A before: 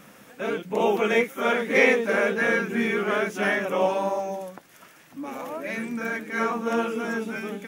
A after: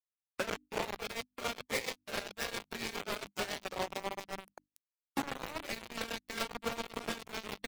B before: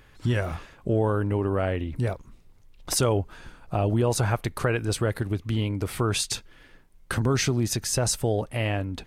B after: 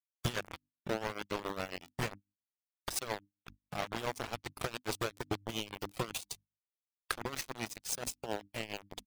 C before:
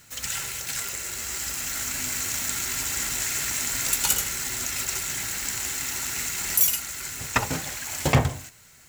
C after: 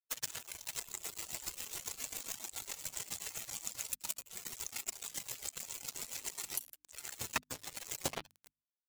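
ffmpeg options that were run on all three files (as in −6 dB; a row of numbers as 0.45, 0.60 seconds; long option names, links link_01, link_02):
-filter_complex "[0:a]acrossover=split=550|6300[link_01][link_02][link_03];[link_01]asoftclip=type=tanh:threshold=-25dB[link_04];[link_04][link_02][link_03]amix=inputs=3:normalize=0,lowshelf=frequency=160:gain=-2.5,acompressor=threshold=-39dB:ratio=12,acrusher=bits=3:mode=log:mix=0:aa=0.000001,asplit=2[link_05][link_06];[link_06]adelay=176,lowpass=frequency=2500:poles=1,volume=-17dB,asplit=2[link_07][link_08];[link_08]adelay=176,lowpass=frequency=2500:poles=1,volume=0.51,asplit=2[link_09][link_10];[link_10]adelay=176,lowpass=frequency=2500:poles=1,volume=0.51,asplit=2[link_11][link_12];[link_12]adelay=176,lowpass=frequency=2500:poles=1,volume=0.51[link_13];[link_07][link_09][link_11][link_13]amix=inputs=4:normalize=0[link_14];[link_05][link_14]amix=inputs=2:normalize=0,aresample=32000,aresample=44100,acrusher=bits=5:mix=0:aa=0.000001,bandreject=frequency=50:width_type=h:width=6,bandreject=frequency=100:width_type=h:width=6,bandreject=frequency=150:width_type=h:width=6,bandreject=frequency=200:width_type=h:width=6,bandreject=frequency=250:width_type=h:width=6,bandreject=frequency=300:width_type=h:width=6,adynamicequalizer=threshold=0.001:dfrequency=1600:dqfactor=2:tfrequency=1600:tqfactor=2:attack=5:release=100:ratio=0.375:range=2:mode=cutabove:tftype=bell,afftdn=noise_reduction=13:noise_floor=-50,tremolo=f=7.3:d=0.76,volume=7dB"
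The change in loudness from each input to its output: −14.5, −13.0, −15.5 LU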